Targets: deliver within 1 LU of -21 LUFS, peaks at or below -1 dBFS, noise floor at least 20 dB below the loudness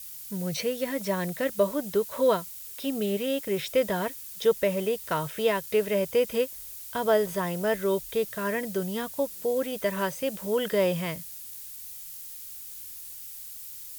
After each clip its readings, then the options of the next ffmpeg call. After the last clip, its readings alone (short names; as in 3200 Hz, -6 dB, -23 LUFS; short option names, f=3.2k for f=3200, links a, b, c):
noise floor -42 dBFS; noise floor target -49 dBFS; loudness -28.5 LUFS; peak -12.0 dBFS; loudness target -21.0 LUFS
-> -af "afftdn=nr=7:nf=-42"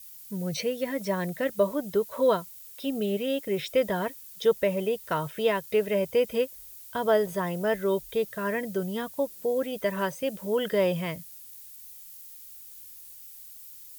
noise floor -47 dBFS; noise floor target -48 dBFS
-> -af "afftdn=nr=6:nf=-47"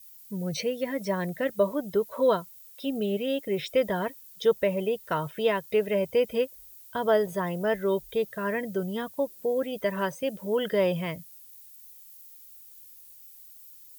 noise floor -50 dBFS; loudness -28.5 LUFS; peak -12.5 dBFS; loudness target -21.0 LUFS
-> -af "volume=7.5dB"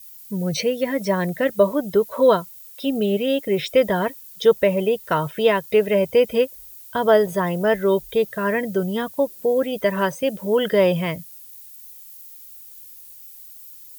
loudness -21.0 LUFS; peak -5.0 dBFS; noise floor -43 dBFS